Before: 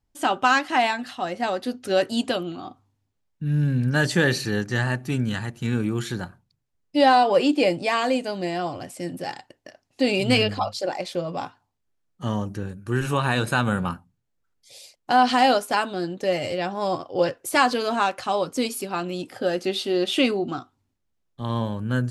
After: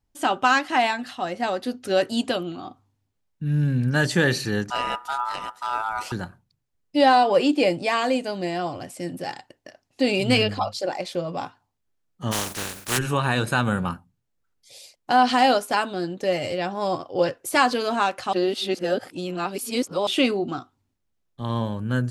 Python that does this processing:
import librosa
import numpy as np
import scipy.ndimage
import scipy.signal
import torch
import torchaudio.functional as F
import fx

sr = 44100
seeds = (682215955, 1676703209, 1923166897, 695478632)

y = fx.ring_mod(x, sr, carrier_hz=1100.0, at=(4.7, 6.12))
y = fx.spec_flatten(y, sr, power=0.26, at=(12.31, 12.97), fade=0.02)
y = fx.edit(y, sr, fx.reverse_span(start_s=18.33, length_s=1.74), tone=tone)